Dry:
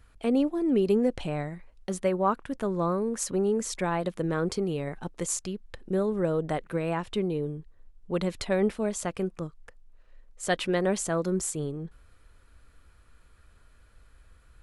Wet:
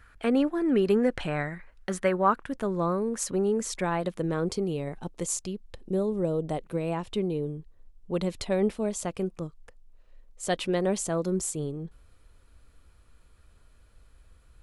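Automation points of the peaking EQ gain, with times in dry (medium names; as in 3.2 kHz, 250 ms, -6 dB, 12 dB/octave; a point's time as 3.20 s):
peaking EQ 1.6 kHz 1 oct
2.06 s +12 dB
2.61 s +0.5 dB
4.05 s +0.5 dB
4.51 s -6 dB
5.43 s -6 dB
6.35 s -14.5 dB
7.14 s -5.5 dB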